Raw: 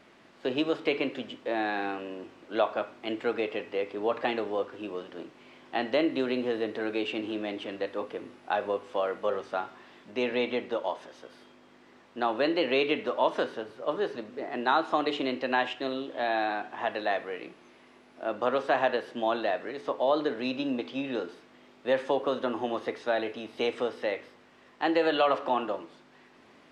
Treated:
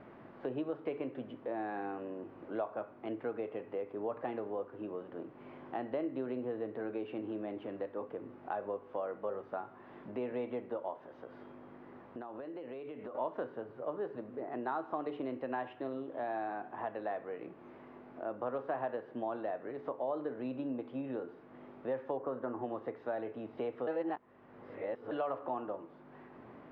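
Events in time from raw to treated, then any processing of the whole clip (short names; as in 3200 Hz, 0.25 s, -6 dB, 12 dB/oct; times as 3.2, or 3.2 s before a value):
11.06–13.15 compressor, threshold -41 dBFS
22.17–22.62 resonant high shelf 2400 Hz -7 dB, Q 1.5
23.87–25.11 reverse
whole clip: LPF 1200 Hz 12 dB/oct; bell 120 Hz +7 dB 0.54 oct; compressor 2:1, threshold -51 dBFS; gain +5 dB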